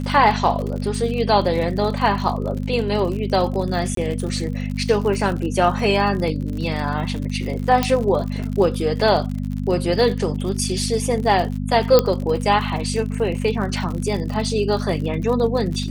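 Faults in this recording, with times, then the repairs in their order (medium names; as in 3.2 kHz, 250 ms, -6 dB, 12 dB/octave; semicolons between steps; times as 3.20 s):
crackle 59 per s -27 dBFS
hum 50 Hz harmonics 5 -25 dBFS
3.95–3.97 s: dropout 23 ms
7.83 s: pop -5 dBFS
11.99 s: pop -2 dBFS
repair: de-click; de-hum 50 Hz, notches 5; interpolate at 3.95 s, 23 ms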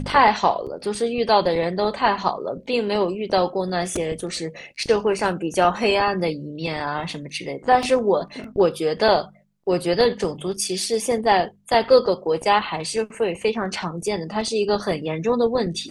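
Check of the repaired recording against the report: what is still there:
7.83 s: pop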